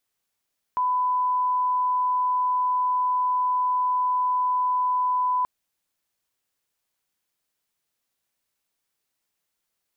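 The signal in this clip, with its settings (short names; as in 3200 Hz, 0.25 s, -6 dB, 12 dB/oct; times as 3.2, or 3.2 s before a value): line-up tone -20 dBFS 4.68 s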